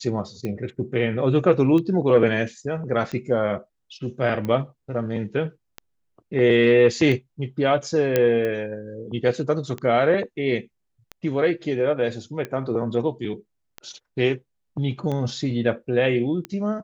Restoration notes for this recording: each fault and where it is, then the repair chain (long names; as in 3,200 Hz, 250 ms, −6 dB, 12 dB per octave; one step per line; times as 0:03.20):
scratch tick 45 rpm −17 dBFS
0:08.16: click −6 dBFS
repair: click removal